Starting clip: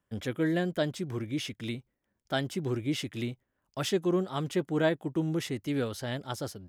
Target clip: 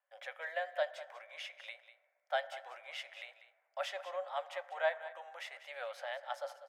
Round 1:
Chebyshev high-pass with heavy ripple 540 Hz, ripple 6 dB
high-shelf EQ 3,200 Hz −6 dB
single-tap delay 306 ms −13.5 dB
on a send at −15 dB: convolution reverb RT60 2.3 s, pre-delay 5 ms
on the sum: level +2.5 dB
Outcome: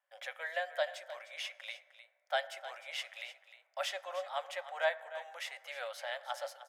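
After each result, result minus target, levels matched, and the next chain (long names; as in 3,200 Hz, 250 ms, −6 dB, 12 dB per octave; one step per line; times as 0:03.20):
echo 111 ms late; 8,000 Hz band +6.5 dB
Chebyshev high-pass with heavy ripple 540 Hz, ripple 6 dB
high-shelf EQ 3,200 Hz −6 dB
single-tap delay 195 ms −13.5 dB
on a send at −15 dB: convolution reverb RT60 2.3 s, pre-delay 5 ms
on the sum: level +2.5 dB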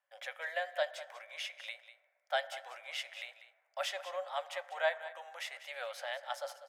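8,000 Hz band +6.5 dB
Chebyshev high-pass with heavy ripple 540 Hz, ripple 6 dB
high-shelf EQ 3,200 Hz −16 dB
single-tap delay 195 ms −13.5 dB
on a send at −15 dB: convolution reverb RT60 2.3 s, pre-delay 5 ms
on the sum: level +2.5 dB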